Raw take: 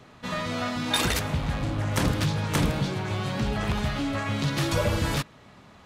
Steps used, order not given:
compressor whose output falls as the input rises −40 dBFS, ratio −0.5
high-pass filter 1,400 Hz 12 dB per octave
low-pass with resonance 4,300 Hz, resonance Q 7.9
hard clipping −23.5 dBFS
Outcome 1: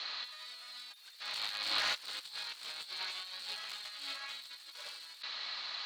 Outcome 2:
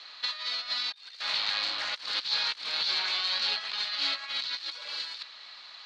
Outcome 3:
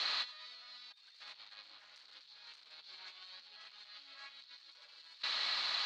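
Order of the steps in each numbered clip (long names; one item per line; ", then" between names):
low-pass with resonance, then hard clipping, then high-pass filter, then compressor whose output falls as the input rises
high-pass filter, then compressor whose output falls as the input rises, then hard clipping, then low-pass with resonance
hard clipping, then low-pass with resonance, then compressor whose output falls as the input rises, then high-pass filter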